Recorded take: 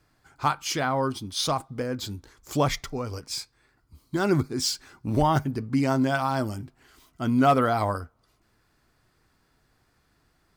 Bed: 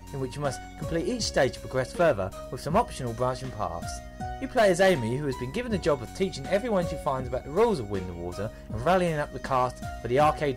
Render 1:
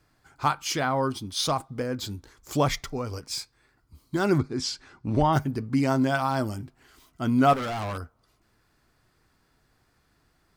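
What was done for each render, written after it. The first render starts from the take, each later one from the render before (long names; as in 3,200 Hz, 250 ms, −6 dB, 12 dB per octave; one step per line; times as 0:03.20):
0:04.38–0:05.33: high-frequency loss of the air 82 metres
0:07.53–0:07.98: gain into a clipping stage and back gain 29 dB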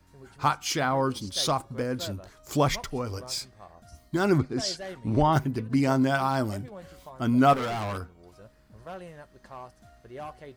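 mix in bed −18 dB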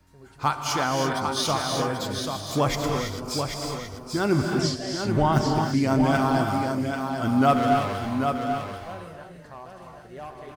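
on a send: single-tap delay 788 ms −6 dB
on the sum: reverb whose tail is shaped and stops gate 360 ms rising, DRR 2.5 dB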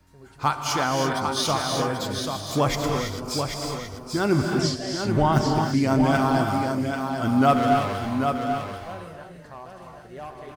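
level +1 dB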